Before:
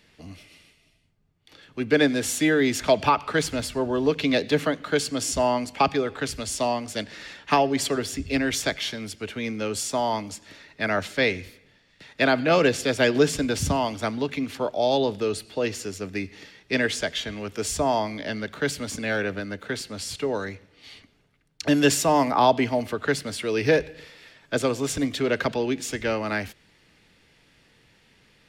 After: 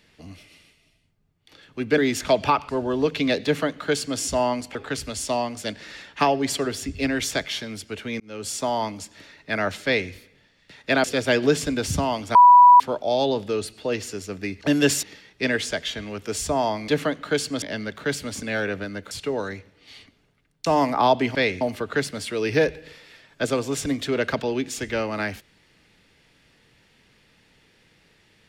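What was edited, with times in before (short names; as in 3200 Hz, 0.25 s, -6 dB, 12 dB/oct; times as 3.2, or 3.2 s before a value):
1.98–2.57 cut
3.28–3.73 cut
4.49–5.23 copy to 18.18
5.79–6.06 cut
9.51–9.86 fade in linear
11.16–11.42 copy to 22.73
12.35–12.76 cut
14.07–14.52 bleep 982 Hz -7 dBFS
19.67–20.07 cut
21.62–22.04 move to 16.33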